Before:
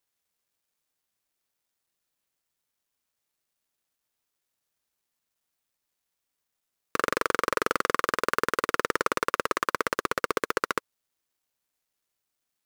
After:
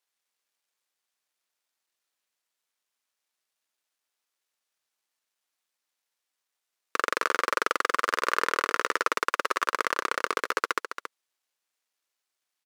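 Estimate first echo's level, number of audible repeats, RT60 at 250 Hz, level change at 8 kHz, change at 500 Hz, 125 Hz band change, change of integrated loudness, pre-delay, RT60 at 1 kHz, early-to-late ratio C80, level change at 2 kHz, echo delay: -9.5 dB, 1, no reverb, -0.5 dB, -3.0 dB, under -10 dB, +0.5 dB, no reverb, no reverb, no reverb, +1.5 dB, 276 ms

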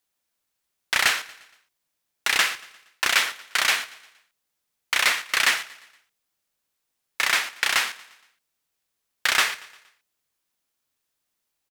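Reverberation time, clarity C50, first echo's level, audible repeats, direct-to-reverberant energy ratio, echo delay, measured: no reverb, no reverb, -19.5 dB, 3, no reverb, 117 ms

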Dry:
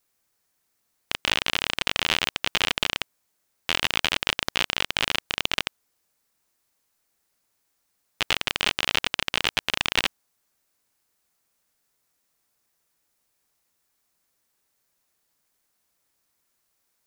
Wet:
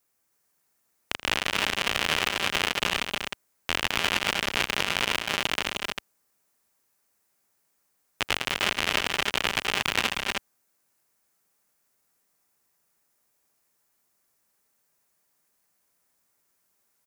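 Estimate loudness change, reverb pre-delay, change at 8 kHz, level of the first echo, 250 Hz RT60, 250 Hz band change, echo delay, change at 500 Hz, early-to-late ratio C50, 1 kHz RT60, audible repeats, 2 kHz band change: -1.5 dB, no reverb, +1.0 dB, -15.0 dB, no reverb, +1.5 dB, 81 ms, +2.0 dB, no reverb, no reverb, 3, 0.0 dB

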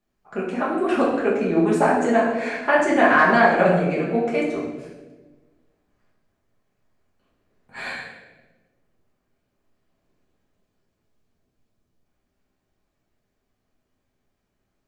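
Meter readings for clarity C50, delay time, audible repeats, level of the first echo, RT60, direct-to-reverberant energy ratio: 2.0 dB, no echo, no echo, no echo, 1.3 s, -6.0 dB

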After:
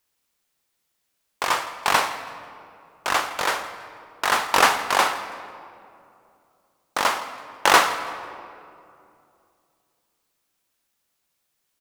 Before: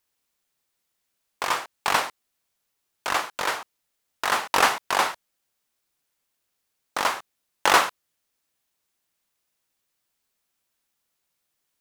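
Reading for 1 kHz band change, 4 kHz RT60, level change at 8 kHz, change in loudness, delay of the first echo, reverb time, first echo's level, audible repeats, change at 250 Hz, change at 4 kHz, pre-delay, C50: +3.0 dB, 1.4 s, +3.0 dB, +2.5 dB, 164 ms, 2.6 s, -18.0 dB, 1, +3.0 dB, +3.0 dB, 18 ms, 10.0 dB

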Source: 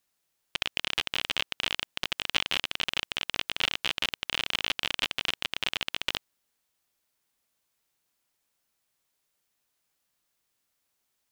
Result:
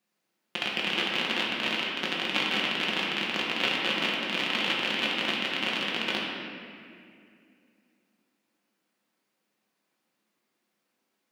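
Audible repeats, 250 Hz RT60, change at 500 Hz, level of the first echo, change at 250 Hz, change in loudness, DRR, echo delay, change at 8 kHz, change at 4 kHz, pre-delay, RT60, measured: no echo, 3.2 s, +8.5 dB, no echo, +12.5 dB, +2.5 dB, -4.5 dB, no echo, -4.0 dB, +1.0 dB, 5 ms, 2.3 s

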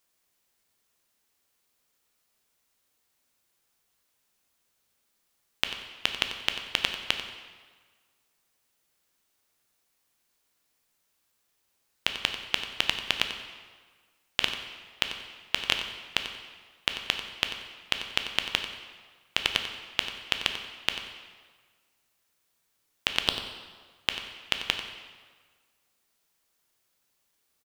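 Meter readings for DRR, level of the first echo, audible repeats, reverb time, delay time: 4.5 dB, -12.5 dB, 1, 1.5 s, 92 ms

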